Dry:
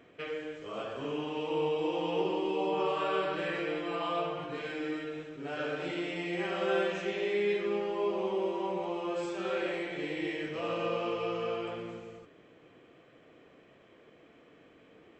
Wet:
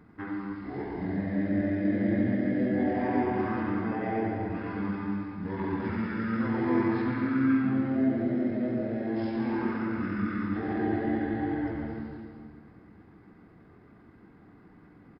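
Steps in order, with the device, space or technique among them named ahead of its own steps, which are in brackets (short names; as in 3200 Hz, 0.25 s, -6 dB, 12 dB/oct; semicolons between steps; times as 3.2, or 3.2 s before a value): monster voice (pitch shift -7.5 st; low shelf 190 Hz +9 dB; reverb RT60 2.0 s, pre-delay 81 ms, DRR 2.5 dB)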